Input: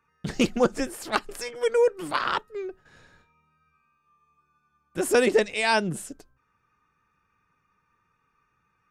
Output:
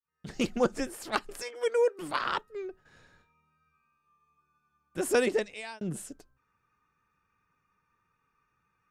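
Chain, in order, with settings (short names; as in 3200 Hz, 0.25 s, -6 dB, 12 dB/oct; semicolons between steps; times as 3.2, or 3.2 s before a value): opening faded in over 0.56 s; 1.42–1.99 HPF 300 Hz 24 dB/oct; 5.17–5.81 fade out; gain -4.5 dB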